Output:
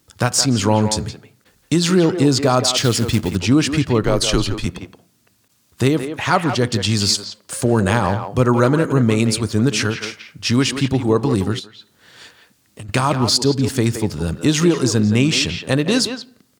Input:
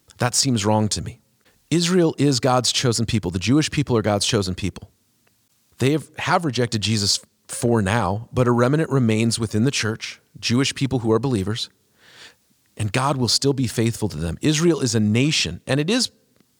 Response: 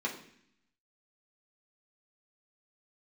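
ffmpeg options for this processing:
-filter_complex "[0:a]asplit=2[link_01][link_02];[link_02]adelay=170,highpass=300,lowpass=3400,asoftclip=type=hard:threshold=-13dB,volume=-7dB[link_03];[link_01][link_03]amix=inputs=2:normalize=0,asplit=2[link_04][link_05];[1:a]atrim=start_sample=2205,afade=type=out:start_time=0.23:duration=0.01,atrim=end_sample=10584,asetrate=29547,aresample=44100[link_06];[link_05][link_06]afir=irnorm=-1:irlink=0,volume=-23dB[link_07];[link_04][link_07]amix=inputs=2:normalize=0,asettb=1/sr,asplit=3[link_08][link_09][link_10];[link_08]atrim=end=2.774[link_11];[link_09]atrim=start=2.77:end=3.36,asetpts=PTS-STARTPTS,afade=type=in:duration=0.004:curve=qsin,afade=type=out:start_time=0.586:duration=0.004:curve=qsin,acrusher=bits=4:mode=log:mix=0:aa=0.000001[link_12];[link_10]atrim=start=3.356[link_13];[link_11][link_12]acrossfade=duration=0.004:curve1=hsin:curve2=qsin[link_14];[link_14][link_13]acrossfade=duration=0.004:curve1=qsin:curve2=hsin,asettb=1/sr,asplit=3[link_15][link_16][link_17];[link_15]atrim=end=4.034[link_18];[link_16]atrim=start=4.03:end=4.66,asetpts=PTS-STARTPTS,afade=type=in:duration=0.004:curve=qsin,afade=type=out:start_time=0.626:duration=0.004:curve=qsin,afreqshift=-81[link_19];[link_17]atrim=start=4.656[link_20];[link_18][link_19]acrossfade=duration=0.004:curve1=hsin:curve2=qsin[link_21];[link_21][link_20]acrossfade=duration=0.004:curve1=qsin:curve2=hsin,asettb=1/sr,asplit=3[link_22][link_23][link_24];[link_22]atrim=end=11.594[link_25];[link_23]atrim=start=11.59:end=12.89,asetpts=PTS-STARTPTS,afade=type=in:duration=0.004:curve=qsin,afade=type=out:start_time=1.296:duration=0.004:curve=qsin,acompressor=threshold=-37dB:ratio=5[link_26];[link_24]atrim=start=12.886[link_27];[link_25][link_26]acrossfade=duration=0.004:curve1=hsin:curve2=qsin[link_28];[link_28][link_27]acrossfade=duration=0.004:curve1=qsin:curve2=hsin,volume=2.5dB"

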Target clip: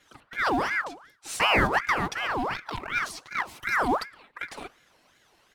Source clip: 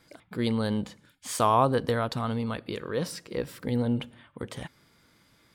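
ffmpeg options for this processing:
ffmpeg -i in.wav -filter_complex "[0:a]asplit=3[link_01][link_02][link_03];[link_01]afade=type=out:start_time=3.62:duration=0.02[link_04];[link_02]aemphasis=mode=production:type=75kf,afade=type=in:start_time=3.62:duration=0.02,afade=type=out:start_time=4.02:duration=0.02[link_05];[link_03]afade=type=in:start_time=4.02:duration=0.02[link_06];[link_04][link_05][link_06]amix=inputs=3:normalize=0,asplit=2[link_07][link_08];[link_08]acrusher=bits=3:mode=log:mix=0:aa=0.000001,volume=-6.5dB[link_09];[link_07][link_09]amix=inputs=2:normalize=0,highshelf=frequency=12000:gain=-7,aecho=1:1:4.4:0.92,bandreject=frequency=104.1:width_type=h:width=4,bandreject=frequency=208.2:width_type=h:width=4,bandreject=frequency=312.3:width_type=h:width=4,bandreject=frequency=416.4:width_type=h:width=4,bandreject=frequency=520.5:width_type=h:width=4,bandreject=frequency=624.6:width_type=h:width=4,bandreject=frequency=728.7:width_type=h:width=4,bandreject=frequency=832.8:width_type=h:width=4,aeval=exprs='val(0)*sin(2*PI*1200*n/s+1200*0.6/2.7*sin(2*PI*2.7*n/s))':channel_layout=same,volume=-3dB" out.wav

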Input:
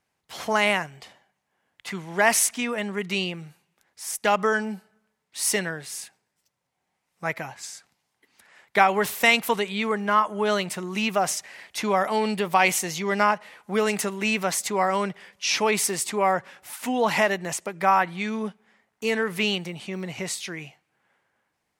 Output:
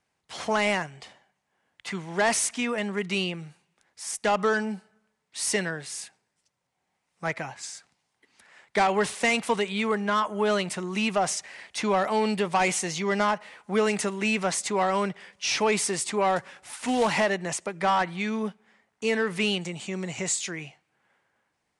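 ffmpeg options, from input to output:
ffmpeg -i in.wav -filter_complex "[0:a]asettb=1/sr,asplit=3[link_01][link_02][link_03];[link_01]atrim=end=19.614[link_04];[link_02]atrim=start=19.61:end=20.51,asetpts=PTS-STARTPTS,afade=type=in:duration=0.004:curve=qsin,afade=type=out:start_time=0.896:duration=0.004:curve=qsin,equalizer=frequency=7200:width_type=o:width=0.32:gain=13.5[link_05];[link_03]atrim=start=20.506[link_06];[link_04][link_05]acrossfade=duration=0.004:curve1=hsin:curve2=qsin[link_07];[link_07][link_06]acrossfade=duration=0.004:curve1=qsin:curve2=hsin,acrossover=split=560[link_08][link_09];[link_09]asoftclip=type=tanh:threshold=-20.5dB[link_10];[link_08][link_10]amix=inputs=2:normalize=0,asettb=1/sr,asplit=3[link_11][link_12][link_13];[link_11]atrim=end=16.364[link_14];[link_12]atrim=start=16.36:end=17.19,asetpts=PTS-STARTPTS,afade=type=in:duration=0.004:curve=qsin,afade=type=out:start_time=0.826:duration=0.004:curve=qsin,acrusher=bits=3:mode=log:mix=0:aa=0.000001[link_15];[link_13]atrim=start=17.186[link_16];[link_14][link_15]acrossfade=duration=0.004:curve1=hsin:curve2=qsin[link_17];[link_17][link_16]acrossfade=duration=0.004:curve1=qsin:curve2=hsin,aresample=22050,aresample=44100" out.wav

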